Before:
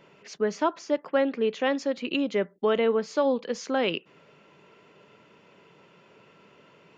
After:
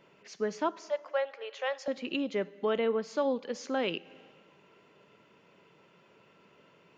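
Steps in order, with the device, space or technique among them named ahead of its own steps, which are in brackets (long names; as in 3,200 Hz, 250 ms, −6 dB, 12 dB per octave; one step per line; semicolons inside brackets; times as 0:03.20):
0:00.78–0:01.88: Chebyshev high-pass filter 540 Hz, order 4
compressed reverb return (on a send at −12 dB: convolution reverb RT60 1.4 s, pre-delay 3 ms + downward compressor 5 to 1, threshold −31 dBFS, peak gain reduction 11 dB)
on the sum: level −5.5 dB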